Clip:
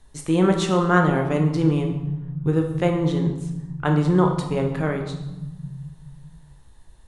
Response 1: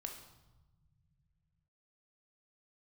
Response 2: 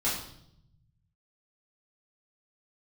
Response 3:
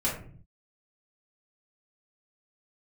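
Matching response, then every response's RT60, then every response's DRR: 1; 1.1 s, 0.70 s, 0.50 s; 2.5 dB, -9.0 dB, -7.5 dB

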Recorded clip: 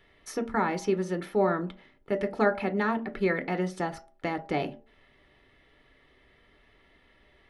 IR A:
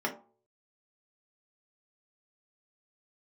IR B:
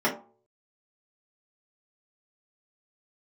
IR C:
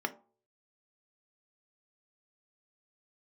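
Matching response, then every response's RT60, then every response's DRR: C; 0.45 s, 0.45 s, 0.45 s; -2.0 dB, -8.5 dB, 6.5 dB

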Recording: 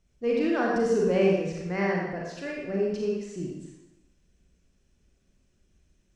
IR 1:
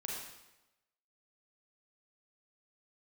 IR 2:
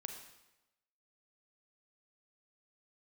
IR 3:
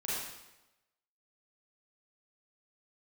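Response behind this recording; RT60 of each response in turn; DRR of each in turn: 1; 1.0 s, 1.0 s, 1.0 s; -3.0 dB, 4.0 dB, -9.0 dB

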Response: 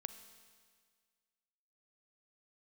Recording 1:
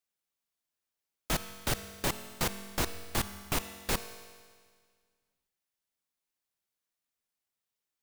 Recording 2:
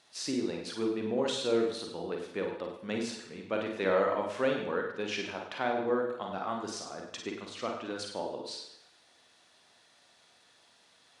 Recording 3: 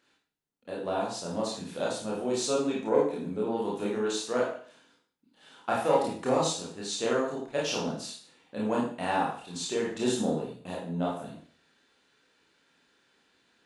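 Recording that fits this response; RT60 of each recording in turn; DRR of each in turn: 1; 1.8 s, 0.75 s, 0.50 s; 10.5 dB, 1.0 dB, -5.0 dB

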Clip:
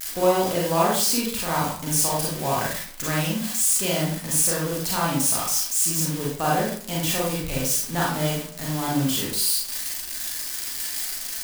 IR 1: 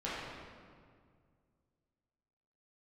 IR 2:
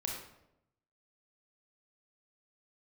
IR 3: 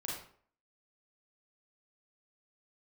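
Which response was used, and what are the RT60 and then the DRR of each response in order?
3; 2.0 s, 0.85 s, 0.55 s; -10.0 dB, -1.0 dB, -5.0 dB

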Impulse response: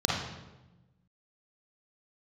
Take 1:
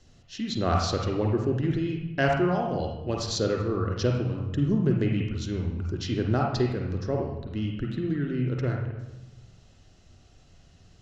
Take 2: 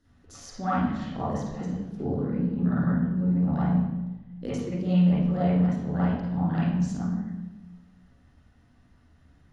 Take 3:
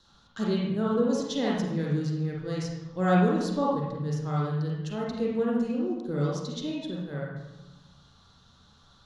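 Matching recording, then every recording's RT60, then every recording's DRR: 3; 1.1 s, 1.1 s, 1.1 s; 0.0 dB, -10.5 dB, -5.0 dB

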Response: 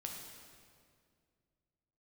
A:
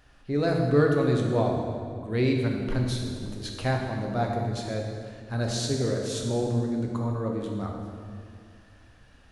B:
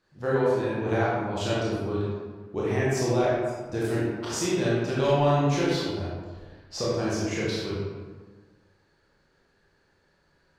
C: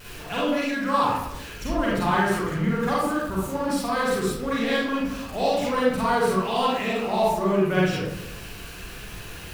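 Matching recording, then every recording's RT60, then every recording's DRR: A; 2.2 s, 1.4 s, 0.90 s; 0.0 dB, -7.5 dB, -7.0 dB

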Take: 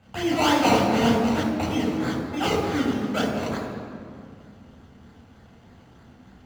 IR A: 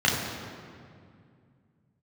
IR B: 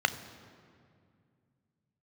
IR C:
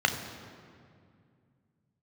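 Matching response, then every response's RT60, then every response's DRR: A; 2.3 s, 2.3 s, 2.3 s; -4.5 dB, 11.0 dB, 5.0 dB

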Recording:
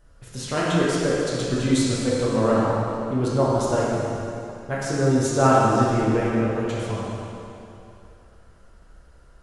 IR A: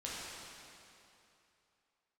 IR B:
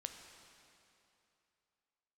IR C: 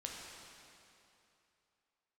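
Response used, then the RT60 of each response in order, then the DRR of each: A; 2.8 s, 2.8 s, 2.8 s; -7.5 dB, 5.0 dB, -2.0 dB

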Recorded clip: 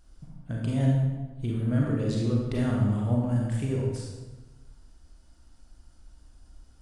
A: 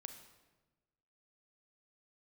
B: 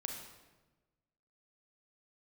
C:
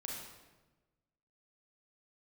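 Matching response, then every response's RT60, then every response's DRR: C; 1.2 s, 1.2 s, 1.2 s; 6.5 dB, 2.0 dB, -2.5 dB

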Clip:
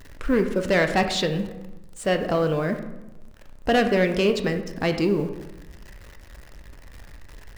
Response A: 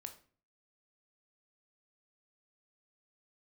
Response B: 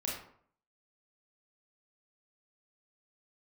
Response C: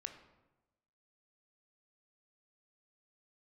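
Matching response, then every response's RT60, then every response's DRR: C; 0.45 s, 0.60 s, 1.1 s; 6.0 dB, -4.0 dB, 6.5 dB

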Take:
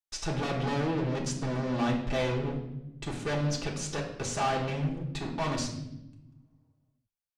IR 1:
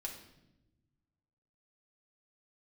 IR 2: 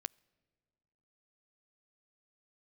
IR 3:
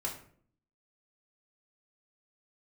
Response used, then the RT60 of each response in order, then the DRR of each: 1; 0.95 s, no single decay rate, 0.55 s; -1.5 dB, 20.5 dB, -3.0 dB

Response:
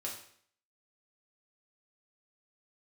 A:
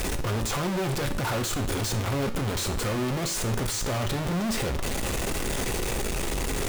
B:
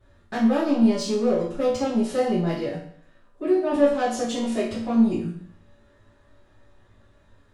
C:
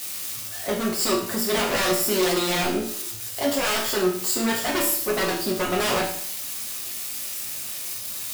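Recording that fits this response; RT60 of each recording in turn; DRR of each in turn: C; 0.60 s, 0.60 s, 0.60 s; 6.5 dB, -13.0 dB, -3.5 dB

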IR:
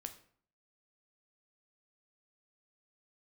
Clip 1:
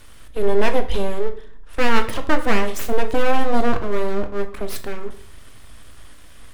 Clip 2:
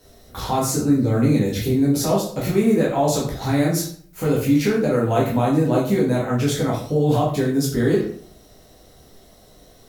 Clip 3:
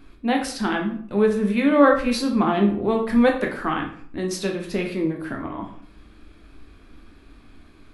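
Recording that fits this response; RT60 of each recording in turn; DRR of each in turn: 1; 0.55 s, 0.55 s, 0.55 s; 7.0 dB, -5.5 dB, 1.5 dB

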